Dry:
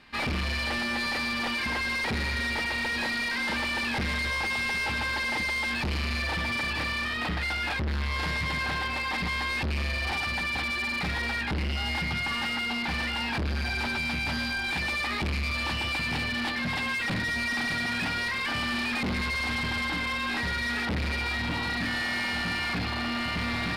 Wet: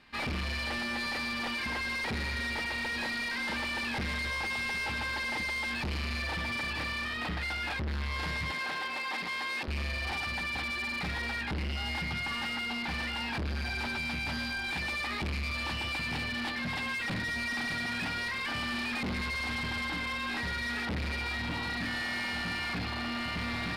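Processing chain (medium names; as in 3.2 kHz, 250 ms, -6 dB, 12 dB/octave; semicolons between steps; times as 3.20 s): 8.51–9.68 s: high-pass 280 Hz 12 dB/octave; trim -4.5 dB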